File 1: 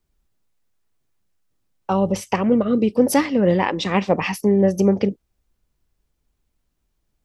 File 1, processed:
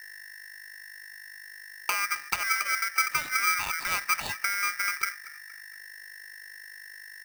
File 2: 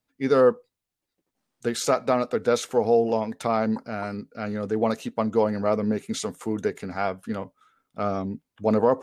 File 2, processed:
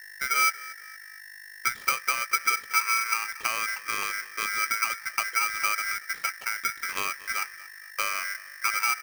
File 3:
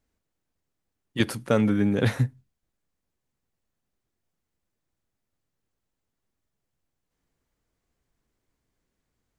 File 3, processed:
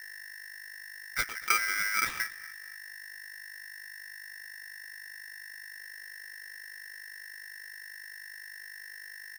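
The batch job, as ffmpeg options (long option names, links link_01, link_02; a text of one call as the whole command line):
ffmpeg -i in.wav -filter_complex "[0:a]highpass=frequency=140:width=0.5412,highpass=frequency=140:width=1.3066,adynamicsmooth=sensitivity=2.5:basefreq=1100,agate=range=-33dB:threshold=-41dB:ratio=3:detection=peak,asoftclip=type=tanh:threshold=-7dB,acompressor=threshold=-29dB:ratio=16,equalizer=frequency=520:width_type=o:width=0.5:gain=11,aeval=exprs='val(0)+0.00631*(sin(2*PI*50*n/s)+sin(2*PI*2*50*n/s)/2+sin(2*PI*3*50*n/s)/3+sin(2*PI*4*50*n/s)/4+sin(2*PI*5*50*n/s)/5)':channel_layout=same,asuperstop=centerf=5000:order=20:qfactor=1.3,asplit=2[link_01][link_02];[link_02]adelay=233,lowpass=frequency=3300:poles=1,volume=-19dB,asplit=2[link_03][link_04];[link_04]adelay=233,lowpass=frequency=3300:poles=1,volume=0.39,asplit=2[link_05][link_06];[link_06]adelay=233,lowpass=frequency=3300:poles=1,volume=0.39[link_07];[link_01][link_03][link_05][link_07]amix=inputs=4:normalize=0,aeval=exprs='val(0)*sgn(sin(2*PI*1800*n/s))':channel_layout=same" out.wav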